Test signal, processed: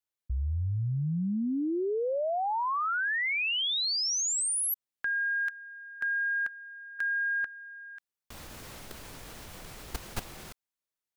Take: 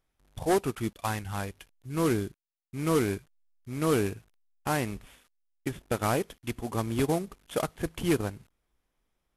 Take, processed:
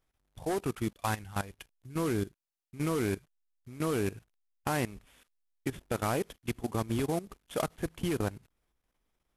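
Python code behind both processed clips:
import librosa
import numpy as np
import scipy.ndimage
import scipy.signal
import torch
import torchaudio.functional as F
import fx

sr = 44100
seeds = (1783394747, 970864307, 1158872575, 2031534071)

y = fx.level_steps(x, sr, step_db=16)
y = y * 10.0 ** (2.5 / 20.0)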